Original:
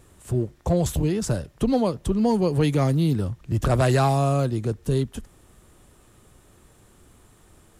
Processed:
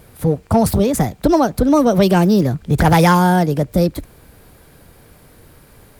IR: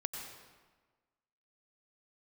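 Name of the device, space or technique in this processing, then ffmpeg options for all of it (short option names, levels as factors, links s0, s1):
nightcore: -af "asetrate=57330,aresample=44100,volume=2.51"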